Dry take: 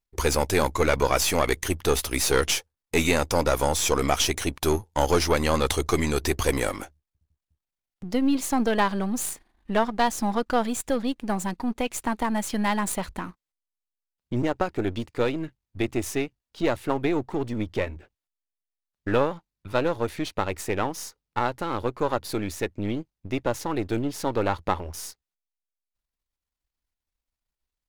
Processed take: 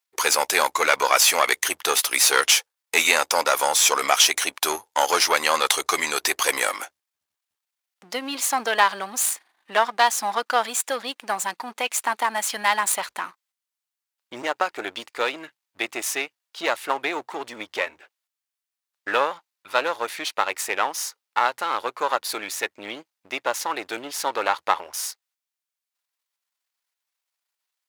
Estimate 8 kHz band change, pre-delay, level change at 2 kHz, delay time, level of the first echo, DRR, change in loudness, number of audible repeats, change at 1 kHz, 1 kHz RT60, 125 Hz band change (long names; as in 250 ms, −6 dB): +8.0 dB, no reverb audible, +8.0 dB, no echo audible, no echo audible, no reverb audible, +3.5 dB, no echo audible, +5.5 dB, no reverb audible, below −20 dB